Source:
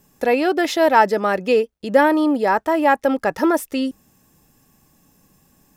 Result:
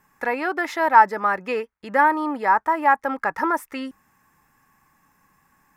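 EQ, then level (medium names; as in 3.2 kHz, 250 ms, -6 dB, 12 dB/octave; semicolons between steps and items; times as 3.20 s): high-order bell 1.4 kHz +15.5 dB; dynamic bell 2.1 kHz, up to -7 dB, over -18 dBFS, Q 0.77; -9.5 dB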